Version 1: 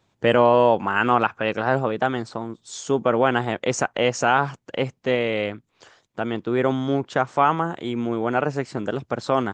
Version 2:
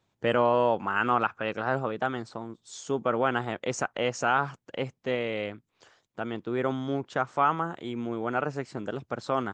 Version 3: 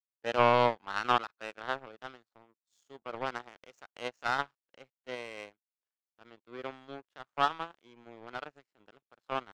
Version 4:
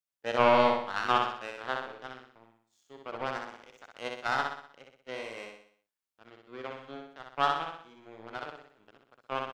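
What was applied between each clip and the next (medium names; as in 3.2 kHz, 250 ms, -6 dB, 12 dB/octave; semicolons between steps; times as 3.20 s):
dynamic bell 1.3 kHz, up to +5 dB, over -36 dBFS, Q 3.9; trim -7.5 dB
frequency weighting A; harmonic-percussive split percussive -12 dB; power-law waveshaper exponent 2; trim +6.5 dB
feedback delay 62 ms, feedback 48%, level -3.5 dB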